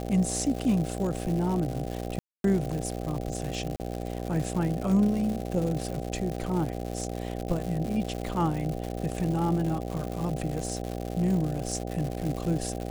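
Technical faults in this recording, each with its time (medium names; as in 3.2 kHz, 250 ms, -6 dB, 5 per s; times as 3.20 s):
buzz 60 Hz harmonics 13 -34 dBFS
crackle 230 per s -32 dBFS
2.19–2.44 s: dropout 252 ms
3.76–3.80 s: dropout 39 ms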